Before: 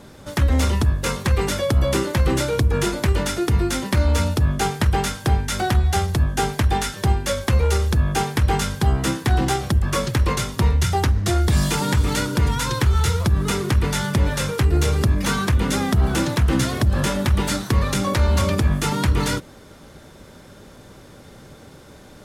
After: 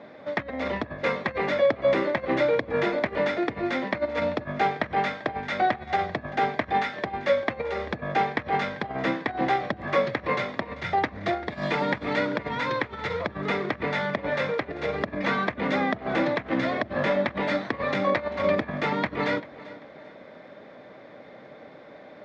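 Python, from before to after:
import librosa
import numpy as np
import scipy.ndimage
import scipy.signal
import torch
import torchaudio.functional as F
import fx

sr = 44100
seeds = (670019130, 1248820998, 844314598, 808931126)

y = fx.over_compress(x, sr, threshold_db=-19.0, ratio=-0.5)
y = fx.cabinet(y, sr, low_hz=310.0, low_slope=12, high_hz=3100.0, hz=(380.0, 630.0, 930.0, 1400.0, 2000.0, 2900.0), db=(-6, 6, -4, -6, 4, -10))
y = fx.echo_feedback(y, sr, ms=391, feedback_pct=35, wet_db=-18.5)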